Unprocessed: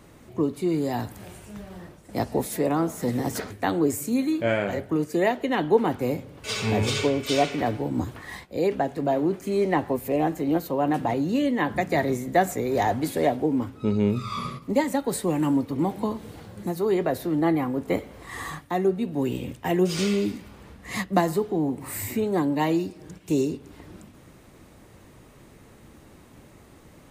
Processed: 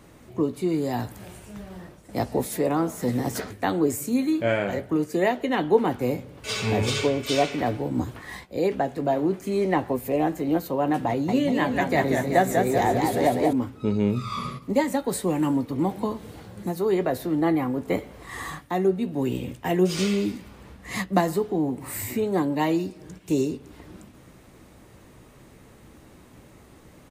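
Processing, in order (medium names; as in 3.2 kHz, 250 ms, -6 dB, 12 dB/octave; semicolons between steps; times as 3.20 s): doubling 16 ms -13.5 dB; 11.09–13.53 s: modulated delay 192 ms, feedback 52%, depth 107 cents, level -4 dB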